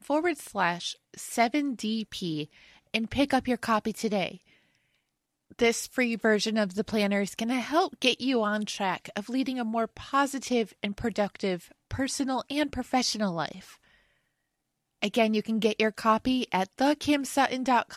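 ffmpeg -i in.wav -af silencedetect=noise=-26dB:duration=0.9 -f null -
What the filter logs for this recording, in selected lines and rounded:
silence_start: 4.29
silence_end: 5.60 | silence_duration: 1.31
silence_start: 13.51
silence_end: 15.02 | silence_duration: 1.51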